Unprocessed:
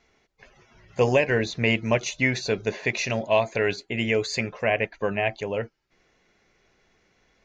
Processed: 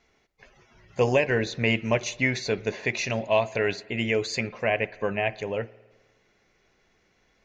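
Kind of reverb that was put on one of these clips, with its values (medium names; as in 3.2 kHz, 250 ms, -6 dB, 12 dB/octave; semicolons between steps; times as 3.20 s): spring tank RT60 1.3 s, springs 52 ms, chirp 60 ms, DRR 19.5 dB; trim -1.5 dB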